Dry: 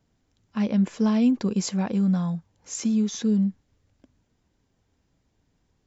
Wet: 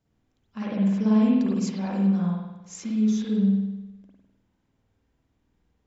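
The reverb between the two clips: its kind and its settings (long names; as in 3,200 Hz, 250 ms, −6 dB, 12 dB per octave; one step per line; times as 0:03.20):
spring reverb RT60 1 s, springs 51 ms, chirp 45 ms, DRR −5.5 dB
level −8 dB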